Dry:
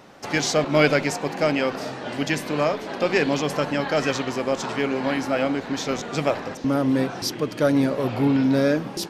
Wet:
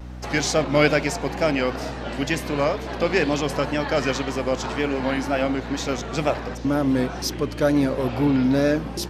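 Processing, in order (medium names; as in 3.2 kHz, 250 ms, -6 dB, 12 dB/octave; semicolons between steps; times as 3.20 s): hum 60 Hz, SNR 13 dB; wow and flutter 69 cents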